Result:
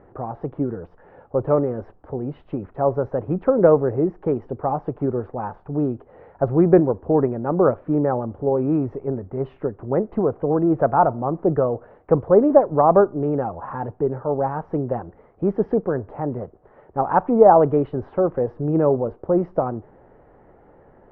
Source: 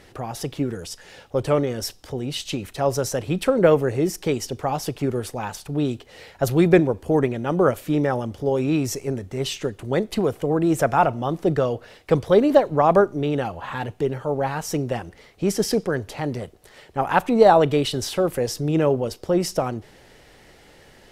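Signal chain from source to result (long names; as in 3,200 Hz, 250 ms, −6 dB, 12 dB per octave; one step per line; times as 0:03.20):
low-pass filter 1,200 Hz 24 dB per octave
low-shelf EQ 210 Hz −4 dB
level +2.5 dB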